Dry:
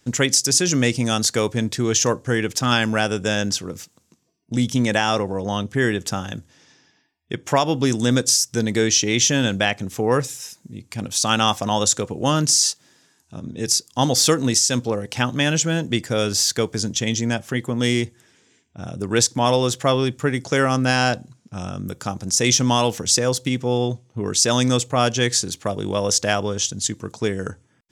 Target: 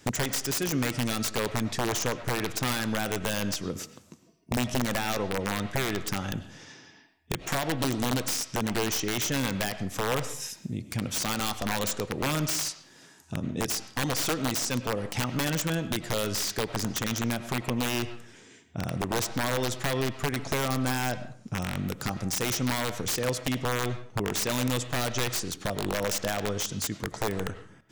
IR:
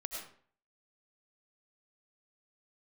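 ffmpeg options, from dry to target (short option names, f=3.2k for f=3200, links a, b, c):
-filter_complex "[0:a]acompressor=threshold=-37dB:ratio=3,aeval=exprs='(mod(21.1*val(0)+1,2)-1)/21.1':c=same,asplit=2[a][b];[1:a]atrim=start_sample=2205,lowpass=3.5k[c];[b][c]afir=irnorm=-1:irlink=0,volume=-6dB[d];[a][d]amix=inputs=2:normalize=0,volume=4.5dB"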